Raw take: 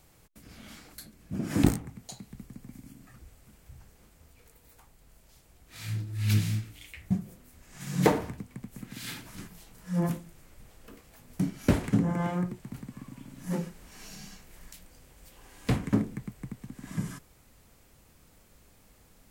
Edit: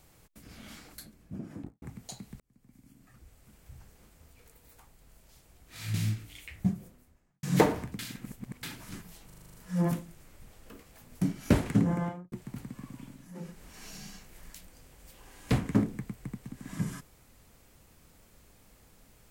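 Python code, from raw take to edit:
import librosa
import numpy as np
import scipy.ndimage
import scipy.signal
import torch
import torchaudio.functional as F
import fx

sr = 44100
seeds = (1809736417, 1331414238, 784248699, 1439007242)

y = fx.studio_fade_out(x, sr, start_s=0.88, length_s=0.94)
y = fx.studio_fade_out(y, sr, start_s=7.15, length_s=0.74)
y = fx.studio_fade_out(y, sr, start_s=12.08, length_s=0.42)
y = fx.edit(y, sr, fx.fade_in_span(start_s=2.4, length_s=1.34),
    fx.cut(start_s=5.94, length_s=0.46),
    fx.reverse_span(start_s=8.45, length_s=0.64),
    fx.stutter(start_s=9.72, slice_s=0.04, count=8),
    fx.fade_down_up(start_s=13.24, length_s=0.56, db=-18.0, fade_s=0.28), tone=tone)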